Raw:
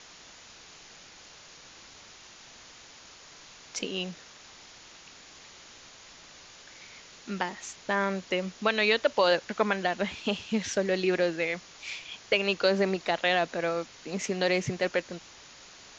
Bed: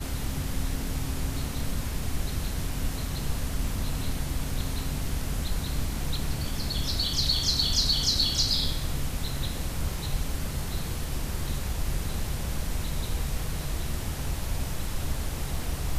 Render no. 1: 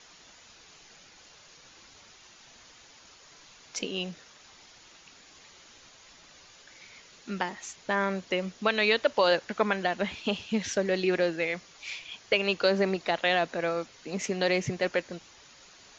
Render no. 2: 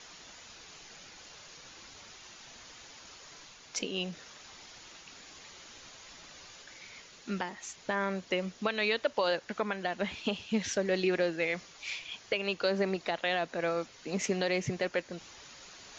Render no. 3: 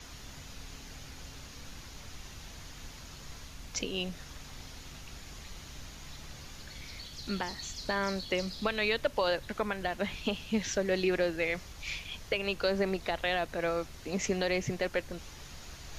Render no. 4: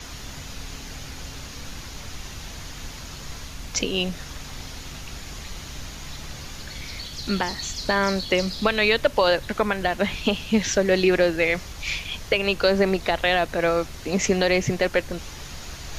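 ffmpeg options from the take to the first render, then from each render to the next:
-af "afftdn=nr=6:nf=-51"
-af "alimiter=limit=-18dB:level=0:latency=1:release=433,areverse,acompressor=mode=upward:threshold=-45dB:ratio=2.5,areverse"
-filter_complex "[1:a]volume=-18.5dB[a];[0:a][a]amix=inputs=2:normalize=0"
-af "volume=10dB"

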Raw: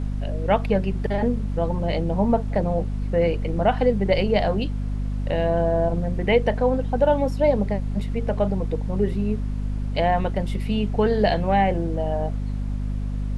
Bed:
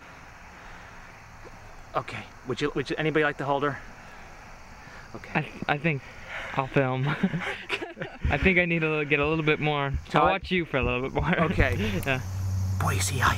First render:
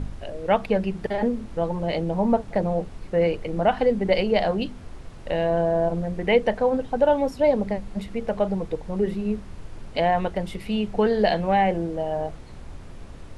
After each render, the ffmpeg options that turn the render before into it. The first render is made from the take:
-af "bandreject=f=50:t=h:w=4,bandreject=f=100:t=h:w=4,bandreject=f=150:t=h:w=4,bandreject=f=200:t=h:w=4,bandreject=f=250:t=h:w=4"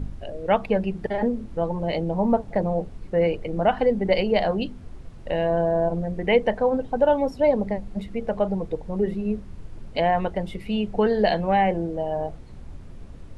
-af "afftdn=nr=7:nf=-41"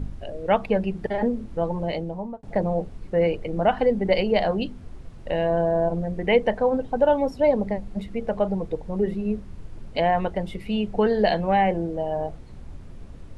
-filter_complex "[0:a]asplit=2[a][b];[a]atrim=end=2.43,asetpts=PTS-STARTPTS,afade=t=out:st=1.8:d=0.63[c];[b]atrim=start=2.43,asetpts=PTS-STARTPTS,afade=t=in:d=0.004:c=hsin[d];[c][d]concat=n=2:v=0:a=1"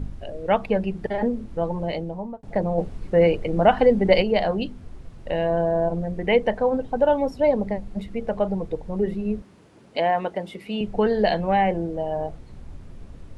-filter_complex "[0:a]asettb=1/sr,asplit=3[a][b][c];[a]atrim=end=9.424[d];[b]atrim=start=9.42:end=10.81,asetpts=PTS-STARTPTS,afade=t=in:d=0.004:c=qsin,afade=t=out:st=1.386:d=0.004:c=qsin,highpass=230[e];[c]atrim=start=10.806[f];[d][e]acrossfade=d=0.004:c1=hsin:c2=qsin[g];[g][f]acrossfade=d=0.004:c1=qsin:c2=hsin,asplit=3[h][i][j];[h]atrim=end=2.782[k];[i]atrim=start=2.778:end=4.222,asetpts=PTS-STARTPTS,volume=4dB[l];[j]atrim=start=4.218[m];[k][l]acrossfade=d=0.004:c1=hsin:c2=hsin[n];[n][m]acrossfade=d=0.004:c1=hsin:c2=hsin"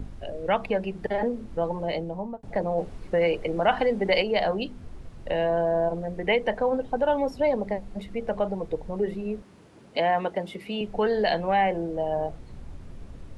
-filter_complex "[0:a]acrossover=split=310|890[a][b][c];[a]acompressor=threshold=-34dB:ratio=6[d];[b]alimiter=limit=-19.5dB:level=0:latency=1[e];[d][e][c]amix=inputs=3:normalize=0"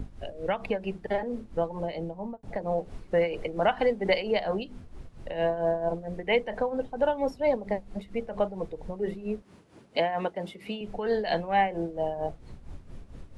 -af "tremolo=f=4.4:d=0.69"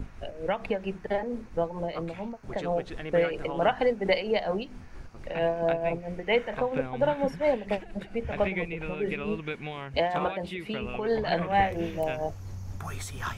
-filter_complex "[1:a]volume=-11.5dB[a];[0:a][a]amix=inputs=2:normalize=0"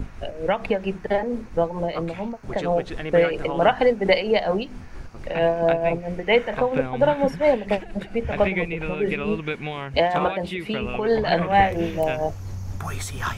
-af "volume=6.5dB"

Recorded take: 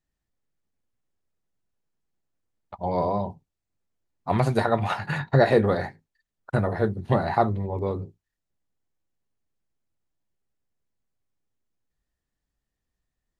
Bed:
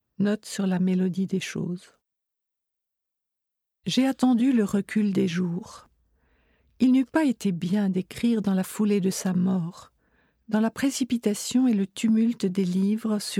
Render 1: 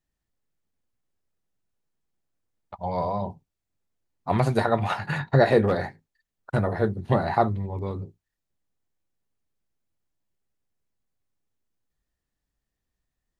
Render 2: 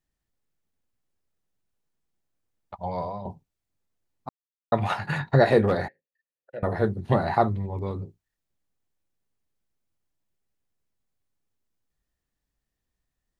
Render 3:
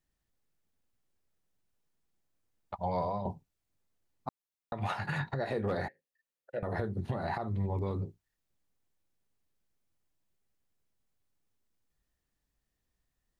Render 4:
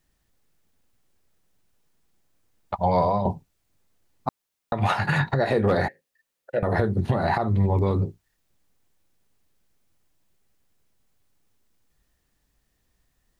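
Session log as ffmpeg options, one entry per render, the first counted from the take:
-filter_complex "[0:a]asettb=1/sr,asplit=3[a][b][c];[a]atrim=end=2.764[d];[b]atrim=start=2.76:end=3.22,asetpts=PTS-STARTPTS,afade=t=in:d=0.004:c=qsin,afade=t=out:st=0.456:d=0.004:c=qsin,equalizer=f=330:t=o:w=1:g=-10[e];[c]atrim=start=3.216[f];[d][e]acrossfade=d=0.004:c1=hsin:c2=qsin[g];[g][f]acrossfade=d=0.004:c1=qsin:c2=hsin,asettb=1/sr,asplit=3[h][i][j];[h]atrim=end=5.644[k];[i]atrim=start=5.64:end=6.62,asetpts=PTS-STARTPTS,afade=t=in:d=0.004:c=qsin,afade=t=out:st=0.976:d=0.004:c=qsin,asoftclip=type=hard:threshold=-13.5dB[l];[j]atrim=start=6.616[m];[k][l]acrossfade=d=0.004:c1=hsin:c2=qsin[n];[n][m]acrossfade=d=0.004:c1=qsin:c2=hsin,asettb=1/sr,asplit=3[o][p][q];[o]atrim=end=7.484[r];[p]atrim=start=7.48:end=8.02,asetpts=PTS-STARTPTS,afade=t=in:d=0.004:c=qsin,afade=t=out:st=0.536:d=0.004:c=qsin,equalizer=f=540:t=o:w=1.6:g=-7[s];[q]atrim=start=8.016[t];[r][s]acrossfade=d=0.004:c1=hsin:c2=qsin[u];[u][t]acrossfade=d=0.004:c1=qsin:c2=hsin"
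-filter_complex "[0:a]asettb=1/sr,asplit=3[a][b][c];[a]atrim=end=5.884[d];[b]atrim=start=5.88:end=6.63,asetpts=PTS-STARTPTS,afade=t=in:d=0.004:c=qsin,afade=t=out:st=0.746:d=0.004:c=qsin,asplit=3[e][f][g];[e]bandpass=f=530:t=q:w=8,volume=0dB[h];[f]bandpass=f=1.84k:t=q:w=8,volume=-6dB[i];[g]bandpass=f=2.48k:t=q:w=8,volume=-9dB[j];[h][i][j]amix=inputs=3:normalize=0[k];[c]atrim=start=6.626[l];[d][k]acrossfade=d=0.004:c1=hsin:c2=qsin[m];[m][l]acrossfade=d=0.004:c1=qsin:c2=hsin,asplit=4[n][o][p][q];[n]atrim=end=3.25,asetpts=PTS-STARTPTS,afade=t=out:st=2.75:d=0.5:silence=0.316228[r];[o]atrim=start=3.25:end=4.29,asetpts=PTS-STARTPTS,afade=t=in:d=0.004:c=hsin:silence=0.316228,afade=t=out:st=1.036:d=0.004:c=hsin[s];[p]atrim=start=4.29:end=4.72,asetpts=PTS-STARTPTS,volume=0[t];[q]atrim=start=4.72,asetpts=PTS-STARTPTS,afade=t=in:d=0.004:c=hsin[u];[r][s][t][u]concat=n=4:v=0:a=1"
-af "acompressor=threshold=-25dB:ratio=6,alimiter=limit=-23dB:level=0:latency=1:release=158"
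-af "volume=11.5dB"

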